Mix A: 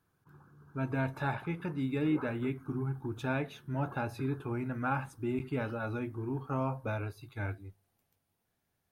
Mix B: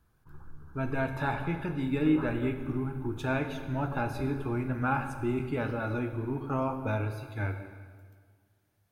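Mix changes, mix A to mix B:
background: remove high-pass filter 110 Hz 24 dB per octave
reverb: on, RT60 1.7 s

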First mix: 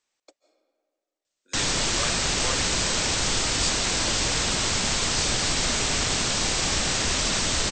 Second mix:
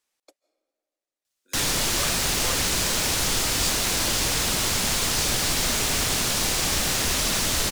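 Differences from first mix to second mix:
speech: send −9.5 dB
master: remove linear-phase brick-wall low-pass 8,500 Hz

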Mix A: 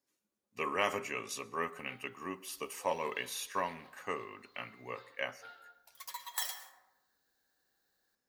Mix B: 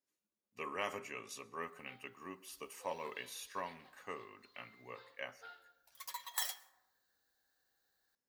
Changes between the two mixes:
speech −7.5 dB
background: send −11.0 dB

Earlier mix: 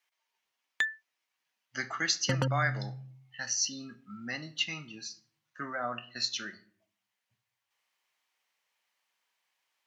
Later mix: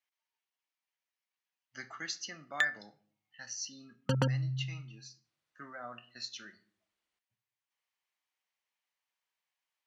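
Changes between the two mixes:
speech −10.0 dB
background: entry +1.80 s

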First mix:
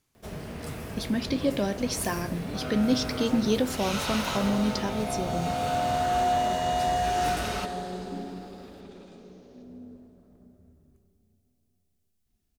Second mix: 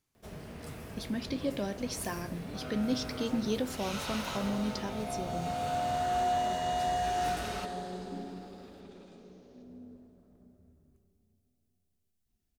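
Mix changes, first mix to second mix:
speech −7.0 dB
first sound −7.0 dB
second sound −4.5 dB

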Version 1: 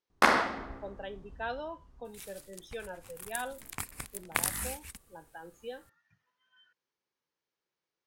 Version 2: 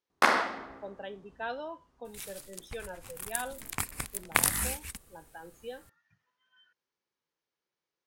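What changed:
first sound: add high-pass filter 300 Hz 6 dB per octave
second sound +5.0 dB

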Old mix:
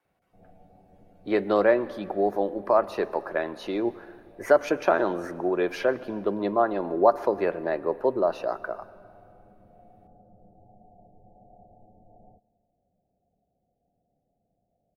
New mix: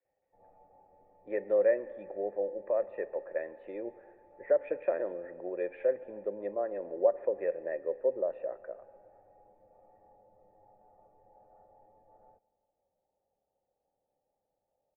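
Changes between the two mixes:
background: remove Chebyshev low-pass with heavy ripple 730 Hz, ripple 6 dB
master: add formant resonators in series e

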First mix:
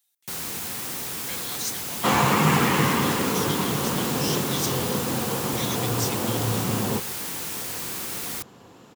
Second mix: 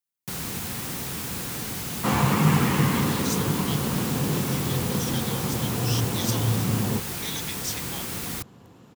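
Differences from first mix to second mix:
speech: entry +1.65 s
second sound −5.0 dB
master: add bass and treble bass +9 dB, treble −2 dB

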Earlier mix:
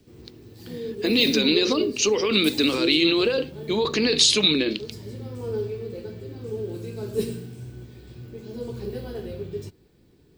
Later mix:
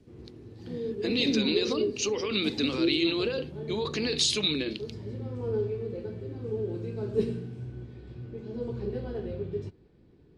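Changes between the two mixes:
speech −8.0 dB
background: add head-to-tape spacing loss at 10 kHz 24 dB

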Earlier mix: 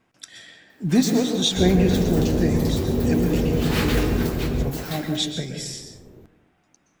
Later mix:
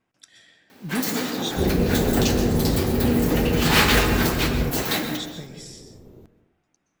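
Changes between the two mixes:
speech −9.0 dB
first sound +9.5 dB

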